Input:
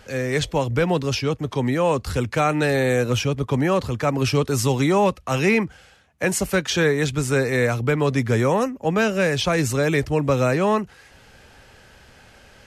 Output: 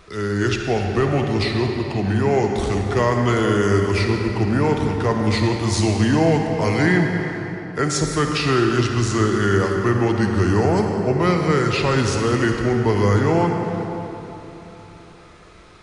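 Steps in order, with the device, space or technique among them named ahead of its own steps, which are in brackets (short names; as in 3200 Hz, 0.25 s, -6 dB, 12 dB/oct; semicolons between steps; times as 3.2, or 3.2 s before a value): slowed and reverbed (varispeed -20%; reverb RT60 3.6 s, pre-delay 44 ms, DRR 2.5 dB)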